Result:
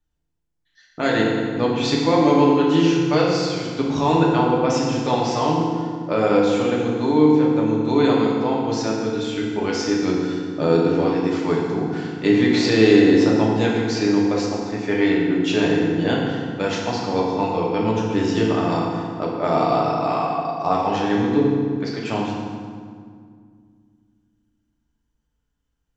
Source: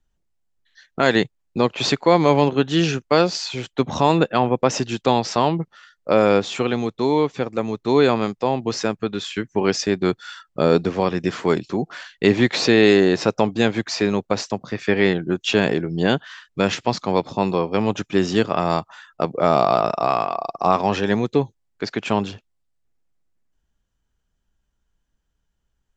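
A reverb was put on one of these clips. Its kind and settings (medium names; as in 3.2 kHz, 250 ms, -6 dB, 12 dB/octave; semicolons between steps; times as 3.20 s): FDN reverb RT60 2 s, low-frequency decay 1.55×, high-frequency decay 0.7×, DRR -4 dB; trim -7 dB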